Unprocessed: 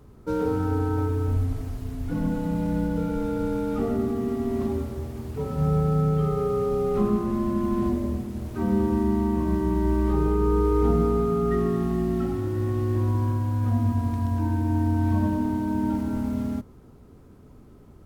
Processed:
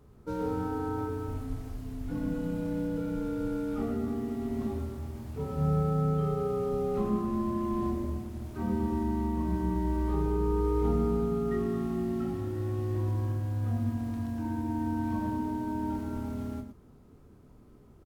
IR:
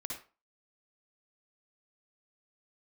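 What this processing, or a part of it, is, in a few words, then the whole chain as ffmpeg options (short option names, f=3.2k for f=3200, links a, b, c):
slapback doubling: -filter_complex "[0:a]asplit=3[a][b][c];[b]adelay=27,volume=-6.5dB[d];[c]adelay=113,volume=-9.5dB[e];[a][d][e]amix=inputs=3:normalize=0,volume=-7dB"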